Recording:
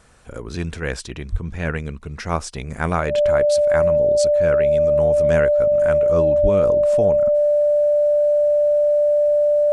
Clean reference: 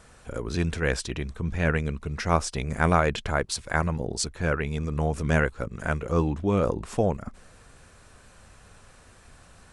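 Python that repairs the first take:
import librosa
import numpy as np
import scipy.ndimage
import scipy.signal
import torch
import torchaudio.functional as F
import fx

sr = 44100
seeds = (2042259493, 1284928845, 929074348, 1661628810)

y = fx.notch(x, sr, hz=590.0, q=30.0)
y = fx.highpass(y, sr, hz=140.0, slope=24, at=(1.31, 1.43), fade=0.02)
y = fx.highpass(y, sr, hz=140.0, slope=24, at=(6.42, 6.54), fade=0.02)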